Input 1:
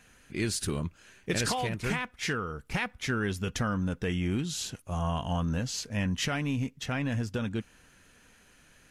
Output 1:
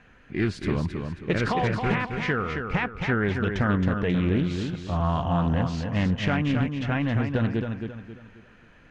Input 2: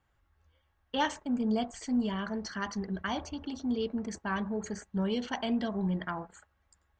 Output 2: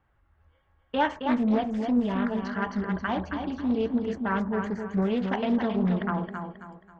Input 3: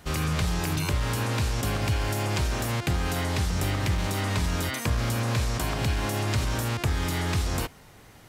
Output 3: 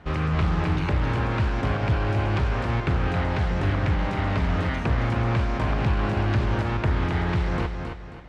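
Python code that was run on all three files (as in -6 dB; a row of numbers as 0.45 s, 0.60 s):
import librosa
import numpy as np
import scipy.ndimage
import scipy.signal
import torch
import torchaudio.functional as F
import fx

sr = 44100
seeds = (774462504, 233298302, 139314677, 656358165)

p1 = scipy.signal.sosfilt(scipy.signal.butter(2, 2200.0, 'lowpass', fs=sr, output='sos'), x)
p2 = p1 + fx.echo_feedback(p1, sr, ms=269, feedback_pct=36, wet_db=-6, dry=0)
p3 = fx.doppler_dist(p2, sr, depth_ms=0.29)
y = p3 * 10.0 ** (-12 / 20.0) / np.max(np.abs(p3))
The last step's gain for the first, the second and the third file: +6.0 dB, +5.5 dB, +2.5 dB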